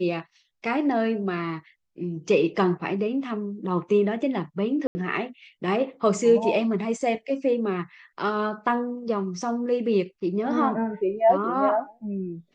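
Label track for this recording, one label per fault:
4.870000	4.950000	dropout 80 ms

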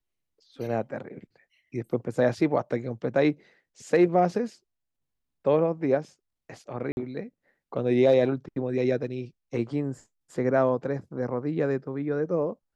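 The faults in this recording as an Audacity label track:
6.920000	6.970000	dropout 51 ms

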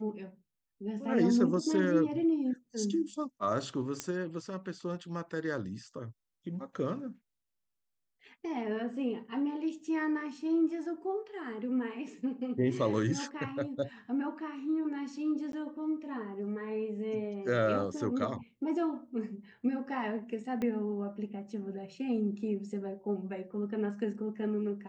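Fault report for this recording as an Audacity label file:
4.000000	4.000000	pop -18 dBFS
15.520000	15.530000	dropout 12 ms
20.620000	20.620000	pop -23 dBFS

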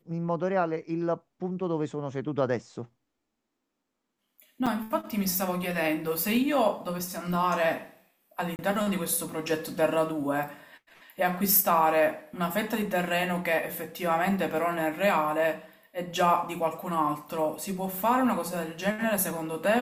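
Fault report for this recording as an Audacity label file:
4.660000	4.670000	dropout 5.9 ms
8.560000	8.590000	dropout 29 ms

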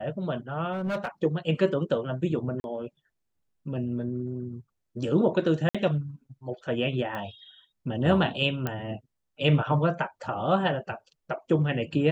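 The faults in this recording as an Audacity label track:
0.720000	1.080000	clipped -25 dBFS
2.600000	2.640000	dropout 41 ms
5.690000	5.750000	dropout 56 ms
7.150000	7.150000	pop -23 dBFS
8.670000	8.670000	pop -15 dBFS

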